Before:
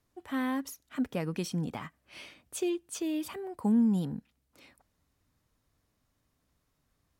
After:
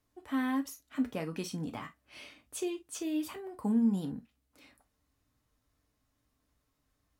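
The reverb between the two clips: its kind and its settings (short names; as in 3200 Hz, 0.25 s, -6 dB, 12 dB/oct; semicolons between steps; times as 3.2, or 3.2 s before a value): non-linear reverb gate 80 ms falling, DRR 5 dB; gain -3 dB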